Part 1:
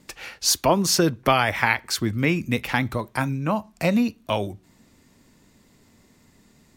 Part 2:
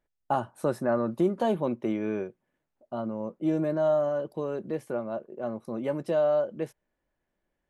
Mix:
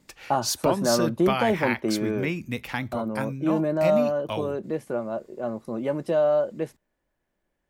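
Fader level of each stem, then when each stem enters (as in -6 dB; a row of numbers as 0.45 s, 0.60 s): -7.0 dB, +3.0 dB; 0.00 s, 0.00 s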